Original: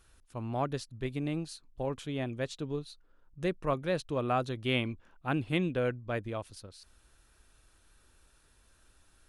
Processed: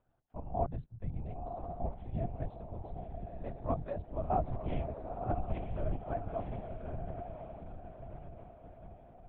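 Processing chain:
pair of resonant band-passes 300 Hz, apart 2.4 octaves
feedback delay with all-pass diffusion 1,002 ms, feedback 50%, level −5 dB
linear-prediction vocoder at 8 kHz whisper
level +4.5 dB

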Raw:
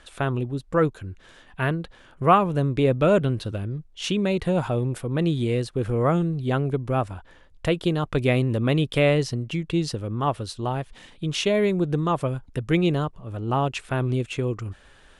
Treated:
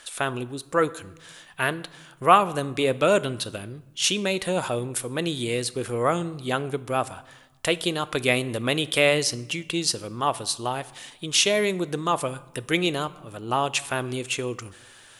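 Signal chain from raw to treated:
RIAA equalisation recording
on a send: convolution reverb RT60 1.1 s, pre-delay 3 ms, DRR 16 dB
on the sum: level +1.5 dB

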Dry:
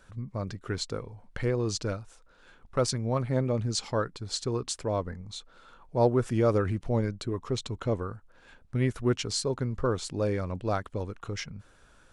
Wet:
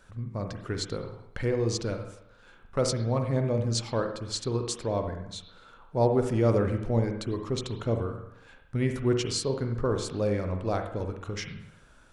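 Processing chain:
on a send at −5 dB: convolution reverb RT60 0.75 s, pre-delay 43 ms
on the sum: dynamic equaliser 1,300 Hz, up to −4 dB, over −43 dBFS, Q 2.2

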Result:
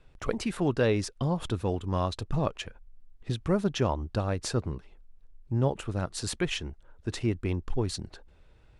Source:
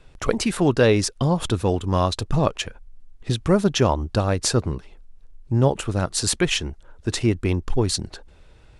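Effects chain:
bass and treble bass +1 dB, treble −5 dB
level −8.5 dB

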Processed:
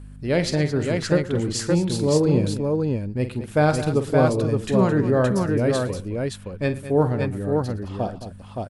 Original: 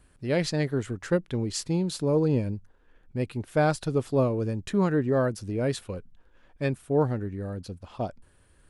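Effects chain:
mains hum 50 Hz, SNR 16 dB
multi-tap delay 47/112/216/570 ms −11/−19.5/−13/−3.5 dB
level +4 dB

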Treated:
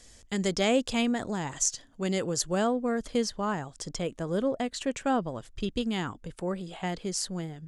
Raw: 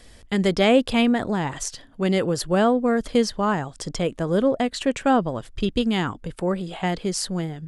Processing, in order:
parametric band 6,700 Hz +14.5 dB 0.74 octaves, from 0:02.67 +6 dB
level −8 dB

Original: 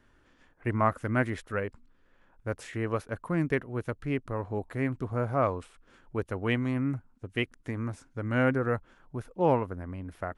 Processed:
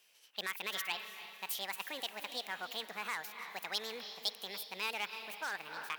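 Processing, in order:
on a send: feedback delay with all-pass diffusion 557 ms, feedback 49%, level −13 dB
on the sum: wrong playback speed 45 rpm record played at 78 rpm
dynamic equaliser 1,500 Hz, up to +6 dB, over −45 dBFS, Q 3
harmonic generator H 3 −22 dB, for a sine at −11.5 dBFS
in parallel at −10.5 dB: wave folding −25.5 dBFS
on the sum: brickwall limiter −21.5 dBFS, peak gain reduction 11 dB
high-pass filter 150 Hz
first difference
level +8 dB

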